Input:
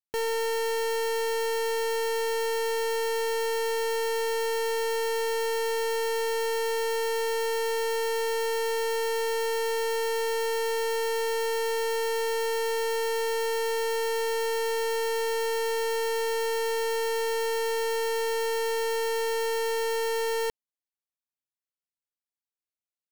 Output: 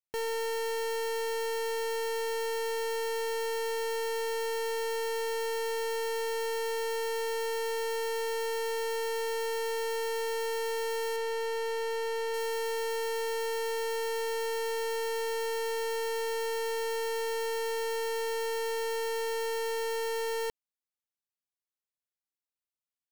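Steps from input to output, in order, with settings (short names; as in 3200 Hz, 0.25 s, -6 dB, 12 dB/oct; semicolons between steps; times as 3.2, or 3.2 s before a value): 11.16–12.34 high shelf 7000 Hz -9 dB; gain -4.5 dB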